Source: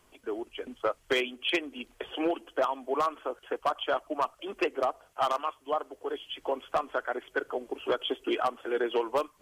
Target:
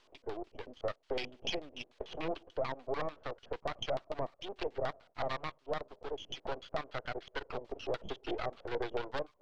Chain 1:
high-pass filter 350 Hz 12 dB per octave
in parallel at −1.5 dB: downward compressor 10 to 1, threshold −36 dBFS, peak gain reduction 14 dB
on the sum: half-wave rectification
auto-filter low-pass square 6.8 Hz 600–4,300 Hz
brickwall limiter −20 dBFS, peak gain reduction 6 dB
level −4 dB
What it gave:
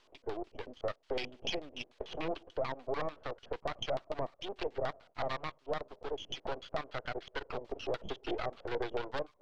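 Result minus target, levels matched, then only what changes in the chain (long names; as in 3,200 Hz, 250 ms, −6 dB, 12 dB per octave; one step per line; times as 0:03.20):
downward compressor: peak gain reduction −6.5 dB
change: downward compressor 10 to 1, threshold −43.5 dBFS, peak gain reduction 20.5 dB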